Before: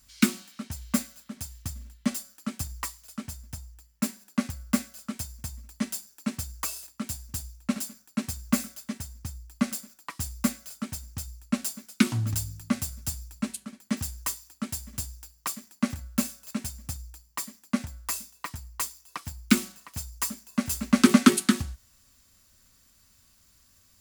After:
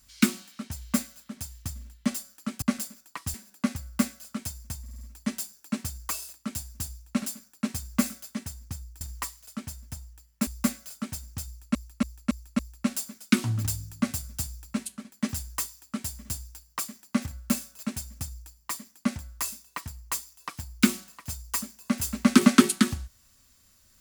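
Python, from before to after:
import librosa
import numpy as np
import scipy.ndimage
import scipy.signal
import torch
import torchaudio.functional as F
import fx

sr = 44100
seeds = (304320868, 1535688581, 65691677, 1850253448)

y = fx.edit(x, sr, fx.swap(start_s=2.62, length_s=1.46, other_s=9.55, other_length_s=0.72),
    fx.stutter(start_s=5.55, slice_s=0.05, count=5),
    fx.repeat(start_s=11.27, length_s=0.28, count=5), tone=tone)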